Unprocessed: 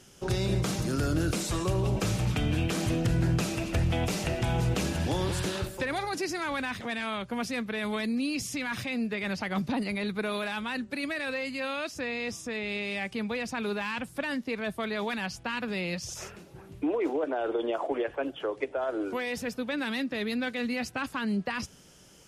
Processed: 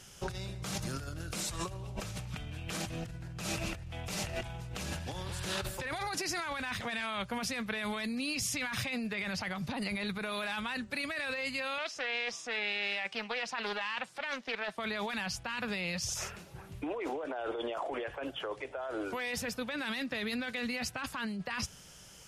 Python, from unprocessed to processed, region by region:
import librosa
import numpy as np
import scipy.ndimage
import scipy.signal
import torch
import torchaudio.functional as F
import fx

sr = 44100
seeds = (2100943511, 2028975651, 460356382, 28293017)

y = fx.chain(x, sr, fx.bandpass_edges(low_hz=390.0, high_hz=5700.0),
    fx.doppler_dist(depth_ms=0.27), at=(11.78, 14.78))
y = fx.peak_eq(y, sr, hz=310.0, db=-10.0, octaves=1.5)
y = fx.over_compress(y, sr, threshold_db=-37.0, ratio=-1.0)